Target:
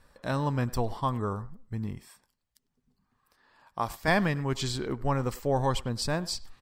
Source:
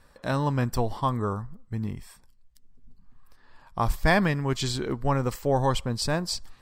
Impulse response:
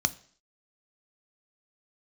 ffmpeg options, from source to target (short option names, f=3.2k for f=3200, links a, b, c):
-filter_complex "[0:a]asettb=1/sr,asplit=3[a][b][c];[a]atrim=end=1.984[d];[b]atrim=start=1.98:end=4.08,asetpts=PTS-STARTPTS,afade=t=in:d=0.004:c=qsin,afade=t=out:st=2.096:d=0.004:c=qsin,highpass=f=290:p=1[e];[c]atrim=start=4.076[f];[d][e]acrossfade=d=0.004:c1=hsin:c2=qsin[g];[g][f]acrossfade=d=0.004:c1=qsin:c2=hsin,asplit=2[h][i];[i]adelay=100,highpass=300,lowpass=3.4k,asoftclip=type=hard:threshold=-19dB,volume=-18dB[j];[h][j]amix=inputs=2:normalize=0,volume=-3dB"